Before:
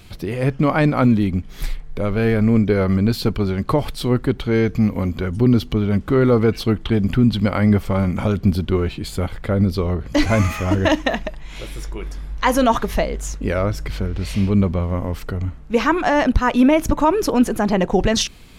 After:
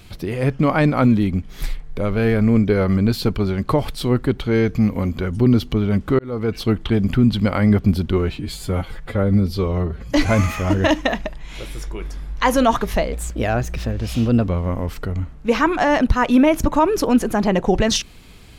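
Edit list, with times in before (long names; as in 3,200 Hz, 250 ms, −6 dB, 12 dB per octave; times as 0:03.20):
0:06.19–0:06.69: fade in
0:07.79–0:08.38: remove
0:08.98–0:10.14: time-stretch 1.5×
0:13.14–0:14.74: play speed 118%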